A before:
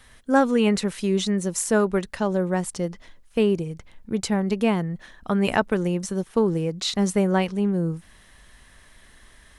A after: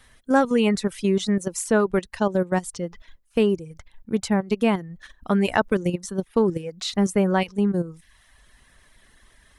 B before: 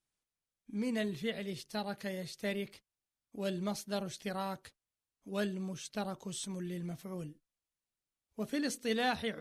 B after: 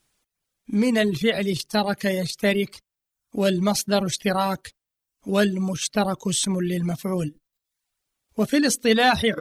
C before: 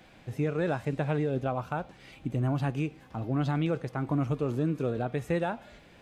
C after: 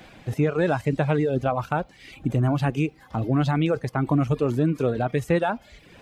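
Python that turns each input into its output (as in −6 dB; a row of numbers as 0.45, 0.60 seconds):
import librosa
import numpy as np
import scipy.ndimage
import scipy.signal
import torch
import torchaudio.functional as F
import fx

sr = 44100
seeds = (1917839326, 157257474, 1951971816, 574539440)

p1 = fx.level_steps(x, sr, step_db=23)
p2 = x + (p1 * 10.0 ** (2.0 / 20.0))
p3 = fx.dereverb_blind(p2, sr, rt60_s=0.68)
y = p3 * 10.0 ** (-24 / 20.0) / np.sqrt(np.mean(np.square(p3)))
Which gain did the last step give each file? −3.5, +13.5, +6.5 decibels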